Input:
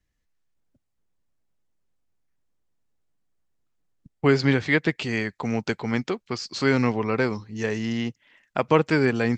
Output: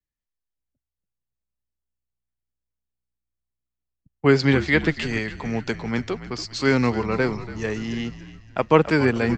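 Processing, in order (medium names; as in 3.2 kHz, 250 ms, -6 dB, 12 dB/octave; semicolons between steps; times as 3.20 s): frequency-shifting echo 285 ms, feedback 53%, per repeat -61 Hz, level -12 dB; three bands expanded up and down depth 40%; trim +1 dB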